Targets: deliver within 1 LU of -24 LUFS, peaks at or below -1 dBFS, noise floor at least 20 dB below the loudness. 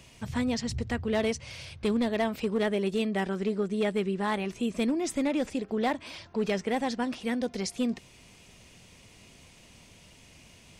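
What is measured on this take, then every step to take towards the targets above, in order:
clipped samples 0.8%; clipping level -21.0 dBFS; loudness -30.0 LUFS; peak level -21.0 dBFS; loudness target -24.0 LUFS
-> clip repair -21 dBFS; trim +6 dB

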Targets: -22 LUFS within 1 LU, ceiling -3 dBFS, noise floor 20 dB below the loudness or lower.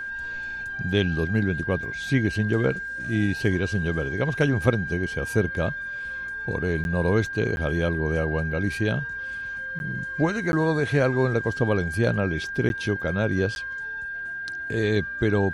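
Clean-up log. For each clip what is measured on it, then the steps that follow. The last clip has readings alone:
dropouts 6; longest dropout 11 ms; steady tone 1.6 kHz; tone level -30 dBFS; loudness -25.5 LUFS; peak level -5.5 dBFS; loudness target -22.0 LUFS
-> interpolate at 6.84/7.56/9.79/10.52/12.69/13.55 s, 11 ms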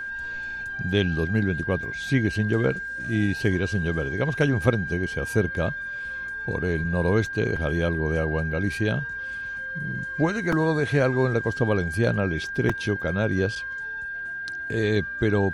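dropouts 0; steady tone 1.6 kHz; tone level -30 dBFS
-> band-stop 1.6 kHz, Q 30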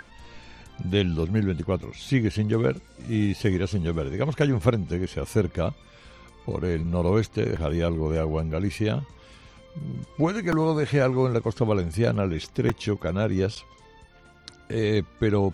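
steady tone not found; loudness -26.0 LUFS; peak level -6.0 dBFS; loudness target -22.0 LUFS
-> trim +4 dB; peak limiter -3 dBFS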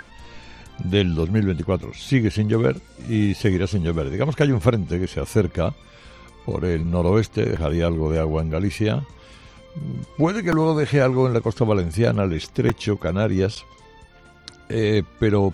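loudness -22.0 LUFS; peak level -3.0 dBFS; noise floor -48 dBFS

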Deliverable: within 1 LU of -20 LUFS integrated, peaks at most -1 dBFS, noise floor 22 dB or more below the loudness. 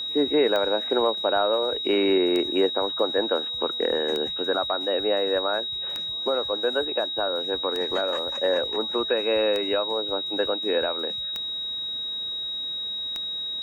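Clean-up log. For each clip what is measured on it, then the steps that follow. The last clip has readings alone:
clicks found 8; steady tone 3.8 kHz; tone level -28 dBFS; loudness -24.5 LUFS; peak level -10.0 dBFS; loudness target -20.0 LUFS
-> de-click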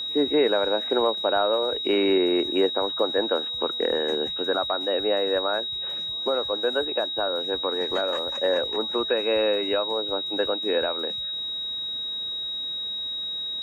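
clicks found 0; steady tone 3.8 kHz; tone level -28 dBFS
-> band-stop 3.8 kHz, Q 30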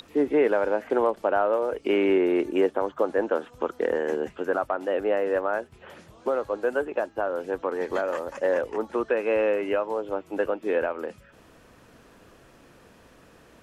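steady tone not found; loudness -26.0 LUFS; peak level -11.0 dBFS; loudness target -20.0 LUFS
-> trim +6 dB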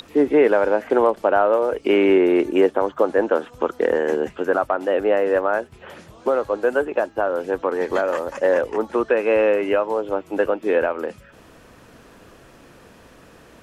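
loudness -20.0 LUFS; peak level -5.0 dBFS; noise floor -49 dBFS

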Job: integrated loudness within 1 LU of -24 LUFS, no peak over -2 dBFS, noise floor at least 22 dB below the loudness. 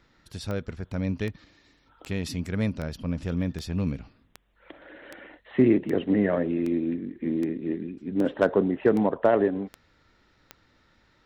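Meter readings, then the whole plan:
clicks found 14; loudness -27.0 LUFS; peak level -9.5 dBFS; loudness target -24.0 LUFS
-> de-click; trim +3 dB

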